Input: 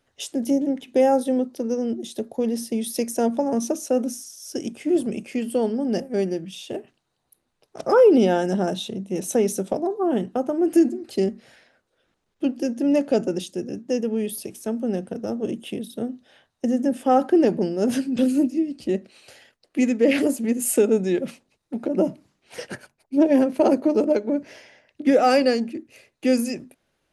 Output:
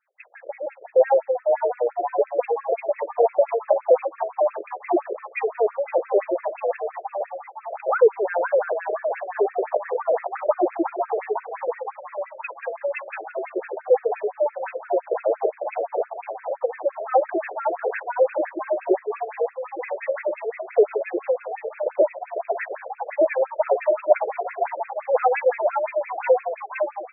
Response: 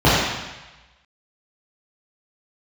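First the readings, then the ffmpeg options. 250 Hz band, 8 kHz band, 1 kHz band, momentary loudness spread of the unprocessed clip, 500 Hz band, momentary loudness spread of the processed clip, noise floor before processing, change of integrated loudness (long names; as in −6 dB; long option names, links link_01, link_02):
−14.5 dB, below −40 dB, +3.5 dB, 13 LU, +2.0 dB, 11 LU, −75 dBFS, −1.5 dB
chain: -filter_complex "[0:a]lowpass=frequency=2700:width_type=q:width=2.4,lowshelf=frequency=350:width_type=q:width=1.5:gain=-11,dynaudnorm=framelen=160:gausssize=3:maxgain=13.5dB,asplit=2[link_01][link_02];[link_02]asplit=8[link_03][link_04][link_05][link_06][link_07][link_08][link_09][link_10];[link_03]adelay=499,afreqshift=96,volume=-5.5dB[link_11];[link_04]adelay=998,afreqshift=192,volume=-10.1dB[link_12];[link_05]adelay=1497,afreqshift=288,volume=-14.7dB[link_13];[link_06]adelay=1996,afreqshift=384,volume=-19.2dB[link_14];[link_07]adelay=2495,afreqshift=480,volume=-23.8dB[link_15];[link_08]adelay=2994,afreqshift=576,volume=-28.4dB[link_16];[link_09]adelay=3493,afreqshift=672,volume=-33dB[link_17];[link_10]adelay=3992,afreqshift=768,volume=-37.6dB[link_18];[link_11][link_12][link_13][link_14][link_15][link_16][link_17][link_18]amix=inputs=8:normalize=0[link_19];[link_01][link_19]amix=inputs=2:normalize=0,afftfilt=real='re*between(b*sr/1024,460*pow(1900/460,0.5+0.5*sin(2*PI*5.8*pts/sr))/1.41,460*pow(1900/460,0.5+0.5*sin(2*PI*5.8*pts/sr))*1.41)':imag='im*between(b*sr/1024,460*pow(1900/460,0.5+0.5*sin(2*PI*5.8*pts/sr))/1.41,460*pow(1900/460,0.5+0.5*sin(2*PI*5.8*pts/sr))*1.41)':win_size=1024:overlap=0.75,volume=-4dB"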